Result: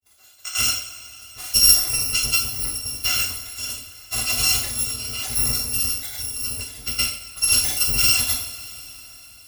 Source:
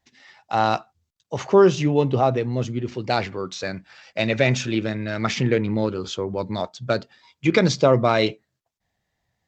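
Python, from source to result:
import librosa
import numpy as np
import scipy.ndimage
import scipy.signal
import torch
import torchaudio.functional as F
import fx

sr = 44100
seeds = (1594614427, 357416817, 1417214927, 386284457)

y = fx.bit_reversed(x, sr, seeds[0], block=256)
y = fx.granulator(y, sr, seeds[1], grain_ms=100.0, per_s=20.0, spray_ms=100.0, spread_st=0)
y = fx.dereverb_blind(y, sr, rt60_s=1.4)
y = fx.rev_double_slope(y, sr, seeds[2], early_s=0.55, late_s=4.6, knee_db=-20, drr_db=-4.5)
y = y * librosa.db_to_amplitude(-2.0)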